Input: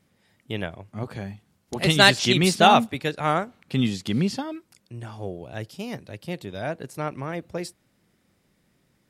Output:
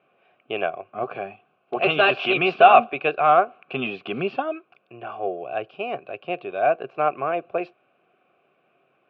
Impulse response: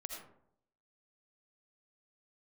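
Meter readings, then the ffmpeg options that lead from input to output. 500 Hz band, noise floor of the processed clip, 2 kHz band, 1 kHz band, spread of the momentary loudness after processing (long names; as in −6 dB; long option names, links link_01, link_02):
+5.5 dB, −67 dBFS, +0.5 dB, +5.0 dB, 16 LU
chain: -filter_complex "[0:a]apsyclip=17dB,asplit=3[link_01][link_02][link_03];[link_01]bandpass=frequency=730:width_type=q:width=8,volume=0dB[link_04];[link_02]bandpass=frequency=1090:width_type=q:width=8,volume=-6dB[link_05];[link_03]bandpass=frequency=2440:width_type=q:width=8,volume=-9dB[link_06];[link_04][link_05][link_06]amix=inputs=3:normalize=0,highpass=110,equalizer=frequency=140:width_type=q:width=4:gain=5,equalizer=frequency=200:width_type=q:width=4:gain=-3,equalizer=frequency=390:width_type=q:width=4:gain=9,equalizer=frequency=850:width_type=q:width=4:gain=-4,equalizer=frequency=1500:width_type=q:width=4:gain=8,equalizer=frequency=2700:width_type=q:width=4:gain=5,lowpass=frequency=3100:width=0.5412,lowpass=frequency=3100:width=1.3066"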